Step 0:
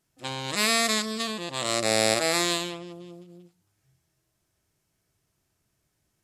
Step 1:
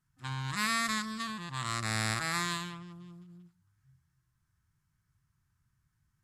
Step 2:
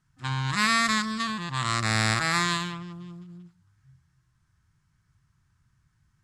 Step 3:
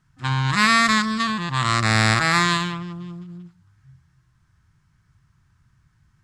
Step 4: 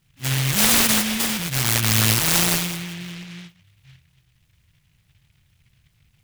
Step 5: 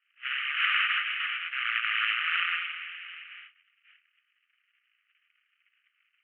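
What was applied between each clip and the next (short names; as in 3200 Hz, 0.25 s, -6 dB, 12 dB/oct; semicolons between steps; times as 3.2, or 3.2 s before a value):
EQ curve 140 Hz 0 dB, 560 Hz -29 dB, 1000 Hz -6 dB, 1600 Hz -4 dB, 2500 Hz -14 dB; gain +3.5 dB
LPF 7900 Hz 12 dB/oct; gain +8 dB
high shelf 6100 Hz -6.5 dB; gain +7 dB
noise-modulated delay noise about 2500 Hz, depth 0.46 ms
Chebyshev band-pass 1200–3000 Hz, order 5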